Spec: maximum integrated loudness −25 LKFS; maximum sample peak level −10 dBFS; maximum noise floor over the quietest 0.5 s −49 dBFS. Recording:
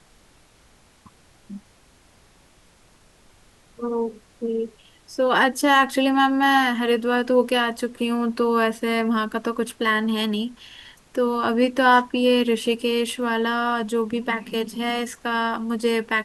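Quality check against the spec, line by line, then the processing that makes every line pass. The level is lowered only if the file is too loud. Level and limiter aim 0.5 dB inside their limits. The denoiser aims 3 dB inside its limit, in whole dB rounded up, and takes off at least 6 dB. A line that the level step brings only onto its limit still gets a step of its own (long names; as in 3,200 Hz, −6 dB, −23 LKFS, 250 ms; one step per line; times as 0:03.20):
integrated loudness −22.0 LKFS: out of spec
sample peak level −4.5 dBFS: out of spec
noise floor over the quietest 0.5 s −55 dBFS: in spec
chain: level −3.5 dB
brickwall limiter −10.5 dBFS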